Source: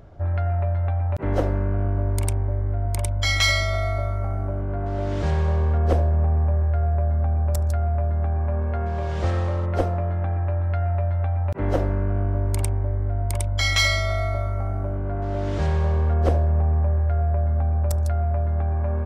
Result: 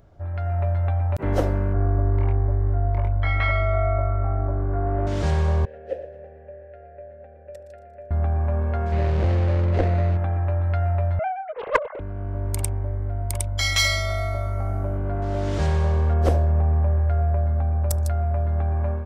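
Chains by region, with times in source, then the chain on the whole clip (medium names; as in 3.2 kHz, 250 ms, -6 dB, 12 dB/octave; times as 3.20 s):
1.73–5.07 s: low-pass 1.9 kHz 24 dB/octave + doubling 23 ms -5 dB
5.65–8.11 s: vowel filter e + feedback delay 117 ms, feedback 46%, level -13 dB
8.92–10.17 s: median filter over 41 samples + low-pass 4 kHz + level flattener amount 70%
11.19–12.00 s: formants replaced by sine waves + small resonant body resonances 510/1100/2100 Hz, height 7 dB, ringing for 25 ms + loudspeaker Doppler distortion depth 0.92 ms
whole clip: treble shelf 5.4 kHz +8 dB; level rider gain up to 8 dB; trim -7 dB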